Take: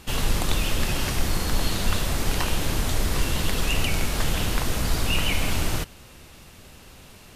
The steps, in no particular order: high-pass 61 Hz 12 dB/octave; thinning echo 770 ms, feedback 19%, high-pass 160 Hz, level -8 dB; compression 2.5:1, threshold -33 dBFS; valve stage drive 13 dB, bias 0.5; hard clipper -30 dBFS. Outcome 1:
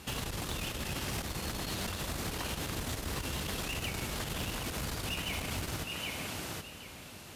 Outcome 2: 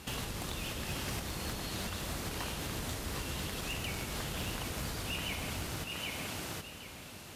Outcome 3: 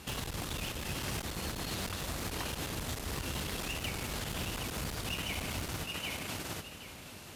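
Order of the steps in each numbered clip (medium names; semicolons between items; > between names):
thinning echo > valve stage > compression > high-pass > hard clipper; thinning echo > compression > high-pass > valve stage > hard clipper; valve stage > thinning echo > compression > hard clipper > high-pass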